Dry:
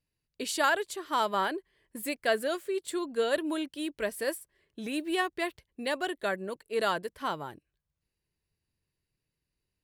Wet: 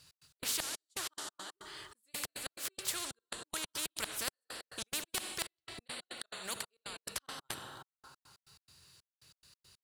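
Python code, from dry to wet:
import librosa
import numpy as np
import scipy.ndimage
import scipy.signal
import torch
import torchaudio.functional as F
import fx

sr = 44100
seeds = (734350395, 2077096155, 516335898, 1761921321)

y = scipy.signal.sosfilt(scipy.signal.butter(2, 96.0, 'highpass', fs=sr, output='sos'), x)
y = fx.hum_notches(y, sr, base_hz=50, count=4)
y = fx.gate_flip(y, sr, shuts_db=-21.0, range_db=-35)
y = fx.peak_eq(y, sr, hz=1300.0, db=13.0, octaves=0.92)
y = fx.rev_plate(y, sr, seeds[0], rt60_s=1.5, hf_ratio=0.85, predelay_ms=0, drr_db=15.5)
y = fx.step_gate(y, sr, bpm=140, pattern='x.x.xxx..x.', floor_db=-60.0, edge_ms=4.5)
y = fx.graphic_eq_10(y, sr, hz=(250, 500, 1000, 2000, 4000, 8000, 16000), db=(-10, -4, -5, -8, 9, 9, -4))
y = fx.spectral_comp(y, sr, ratio=4.0)
y = F.gain(torch.from_numpy(y), -4.0).numpy()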